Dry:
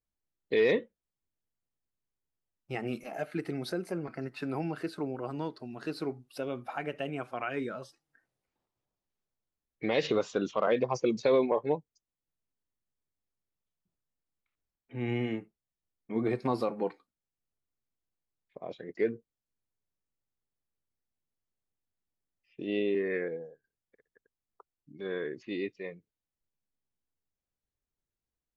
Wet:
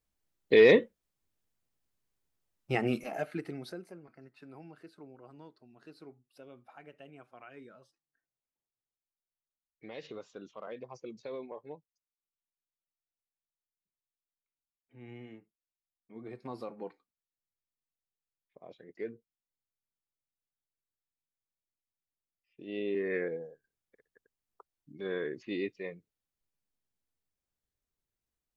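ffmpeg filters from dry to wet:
-af "volume=22.5dB,afade=t=out:st=2.76:d=0.66:silence=0.316228,afade=t=out:st=3.42:d=0.58:silence=0.237137,afade=t=in:st=16.22:d=0.49:silence=0.473151,afade=t=in:st=22.64:d=0.56:silence=0.316228"

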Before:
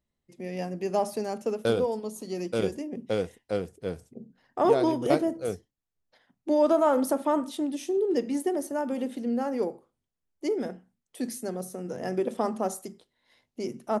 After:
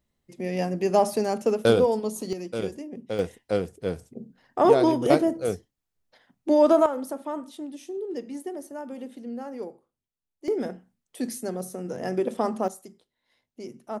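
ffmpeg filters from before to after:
-af "asetnsamples=n=441:p=0,asendcmd='2.33 volume volume -2.5dB;3.19 volume volume 4dB;6.86 volume volume -7dB;10.48 volume volume 2dB;12.68 volume volume -6dB',volume=6dB"

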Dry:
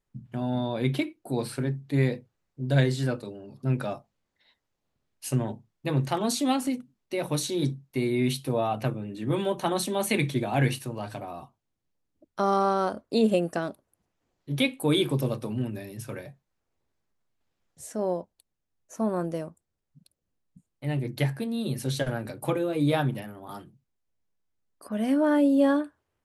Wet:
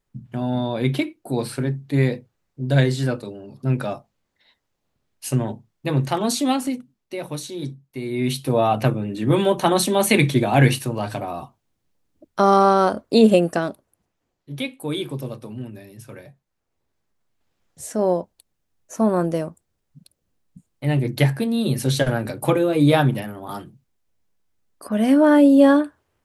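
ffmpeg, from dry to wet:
-af "volume=28.5dB,afade=t=out:st=6.41:d=1.01:silence=0.398107,afade=t=in:st=8.03:d=0.66:silence=0.251189,afade=t=out:st=13.27:d=1.23:silence=0.251189,afade=t=in:st=16.1:d=1.99:silence=0.266073"

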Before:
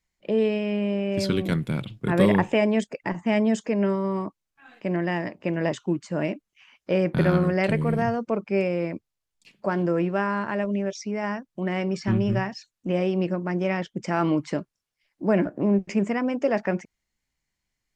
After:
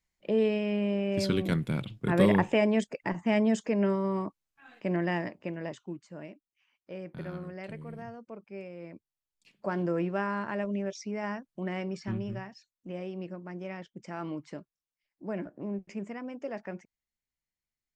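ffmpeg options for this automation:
-af "volume=9dB,afade=t=out:st=5.16:d=0.4:silence=0.398107,afade=t=out:st=5.56:d=0.75:silence=0.446684,afade=t=in:st=8.75:d=1.03:silence=0.237137,afade=t=out:st=11.51:d=0.89:silence=0.398107"

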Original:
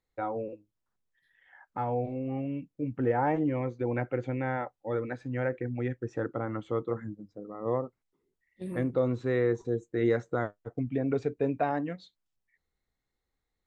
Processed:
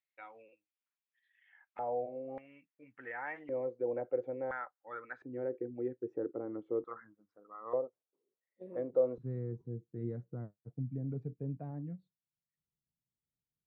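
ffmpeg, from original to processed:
-af "asetnsamples=n=441:p=0,asendcmd='1.79 bandpass f 600;2.38 bandpass f 1900;3.49 bandpass f 520;4.51 bandpass f 1400;5.22 bandpass f 390;6.84 bandpass f 1300;7.73 bandpass f 540;9.18 bandpass f 150',bandpass=f=2.5k:t=q:w=3:csg=0"

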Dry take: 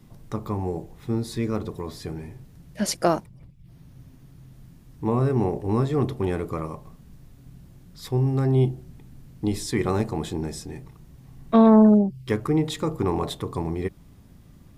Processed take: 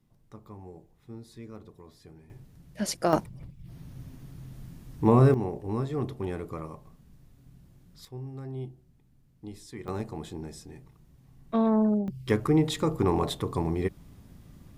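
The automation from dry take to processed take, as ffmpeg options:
-af "asetnsamples=n=441:p=0,asendcmd='2.3 volume volume -5dB;3.13 volume volume 3.5dB;5.34 volume volume -7.5dB;8.05 volume volume -17dB;9.88 volume volume -9.5dB;12.08 volume volume -0.5dB',volume=-17.5dB"

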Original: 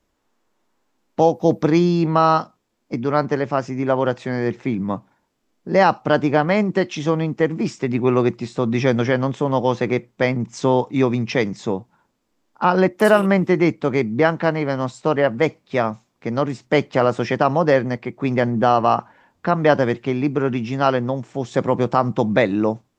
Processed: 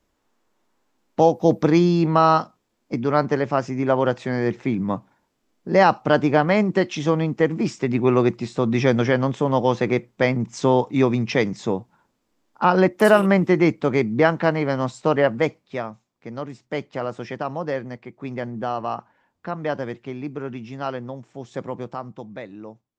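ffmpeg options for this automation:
-af "volume=-0.5dB,afade=t=out:st=15.23:d=0.64:silence=0.316228,afade=t=out:st=21.58:d=0.7:silence=0.375837"

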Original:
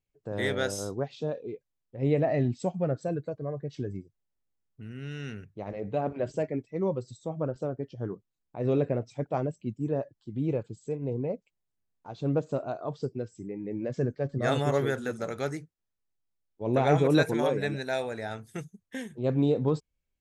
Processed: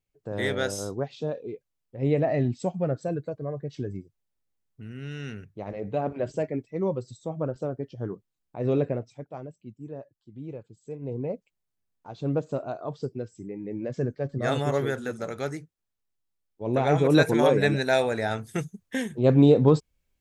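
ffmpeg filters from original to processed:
-af "volume=19dB,afade=t=out:st=8.83:d=0.42:silence=0.281838,afade=t=in:st=10.75:d=0.51:silence=0.316228,afade=t=in:st=16.95:d=0.71:silence=0.421697"

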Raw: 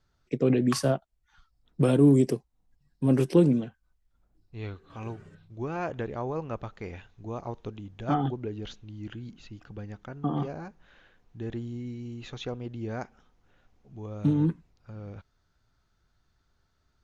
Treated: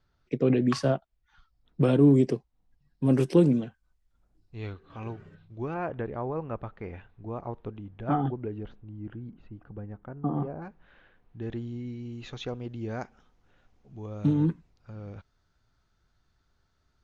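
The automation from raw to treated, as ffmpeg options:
-af "asetnsamples=n=441:p=0,asendcmd='3.06 lowpass f 10000;4.73 lowpass f 4100;5.74 lowpass f 2100;8.63 lowpass f 1200;10.62 lowpass f 2900;11.42 lowpass f 5100;12.14 lowpass f 8400',lowpass=4.8k"

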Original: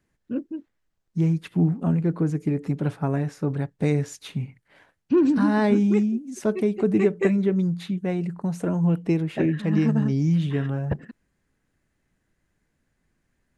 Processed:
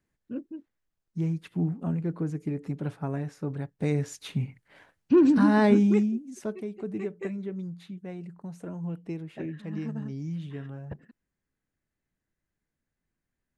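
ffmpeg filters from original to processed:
-af "afade=t=in:st=3.72:d=0.7:silence=0.446684,afade=t=out:st=5.72:d=0.89:silence=0.223872"

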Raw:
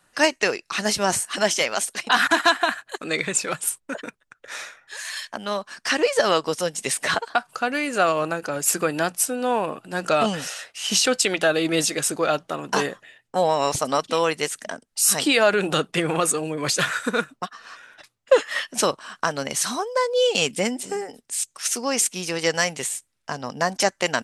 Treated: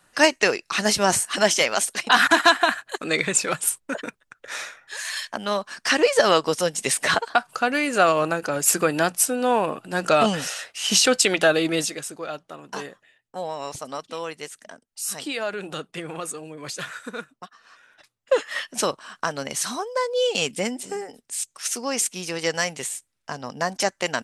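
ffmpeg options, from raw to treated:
-af "volume=10dB,afade=t=out:st=11.49:d=0.57:silence=0.237137,afade=t=in:st=17.67:d=0.91:silence=0.398107"

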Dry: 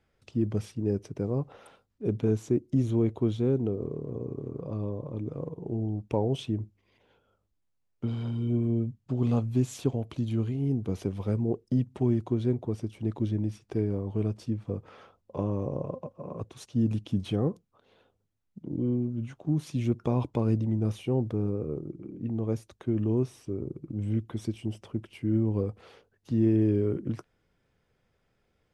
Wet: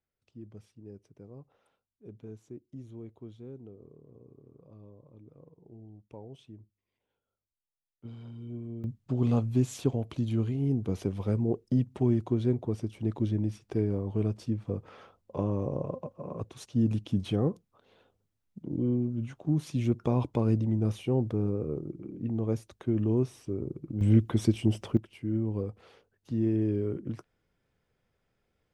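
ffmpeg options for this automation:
-af "asetnsamples=n=441:p=0,asendcmd='8.05 volume volume -12.5dB;8.84 volume volume 0dB;24.01 volume volume 7.5dB;24.97 volume volume -4dB',volume=-19dB"

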